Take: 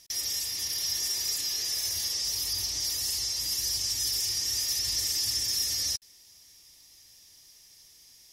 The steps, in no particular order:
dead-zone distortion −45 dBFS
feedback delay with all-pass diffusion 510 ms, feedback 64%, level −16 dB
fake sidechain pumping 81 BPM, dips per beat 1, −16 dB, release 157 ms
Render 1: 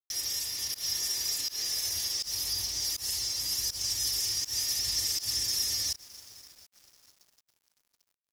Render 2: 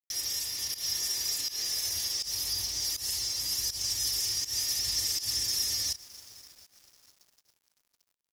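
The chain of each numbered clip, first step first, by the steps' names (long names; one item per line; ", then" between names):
feedback delay with all-pass diffusion, then fake sidechain pumping, then dead-zone distortion
feedback delay with all-pass diffusion, then dead-zone distortion, then fake sidechain pumping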